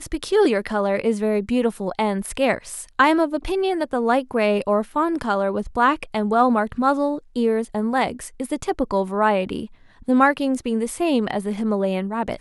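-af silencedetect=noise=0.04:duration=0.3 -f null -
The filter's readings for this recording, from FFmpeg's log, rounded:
silence_start: 9.65
silence_end: 10.08 | silence_duration: 0.43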